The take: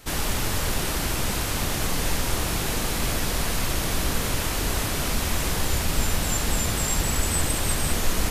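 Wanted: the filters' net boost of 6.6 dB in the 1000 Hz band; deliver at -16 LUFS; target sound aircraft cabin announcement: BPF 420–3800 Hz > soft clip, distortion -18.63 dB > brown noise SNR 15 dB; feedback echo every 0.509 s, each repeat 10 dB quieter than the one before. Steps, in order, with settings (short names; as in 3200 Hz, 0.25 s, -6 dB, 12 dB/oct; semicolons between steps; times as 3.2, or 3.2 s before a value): BPF 420–3800 Hz; bell 1000 Hz +8.5 dB; feedback echo 0.509 s, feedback 32%, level -10 dB; soft clip -21.5 dBFS; brown noise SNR 15 dB; gain +12.5 dB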